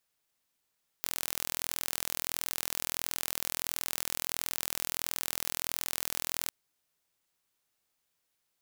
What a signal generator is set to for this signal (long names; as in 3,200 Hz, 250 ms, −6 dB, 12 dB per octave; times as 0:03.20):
impulse train 41.5 per second, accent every 0, −5.5 dBFS 5.47 s